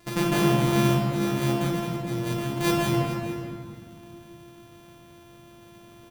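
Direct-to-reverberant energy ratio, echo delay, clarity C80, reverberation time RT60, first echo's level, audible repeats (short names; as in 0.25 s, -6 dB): -4.5 dB, 0.433 s, 1.5 dB, 2.1 s, -13.5 dB, 1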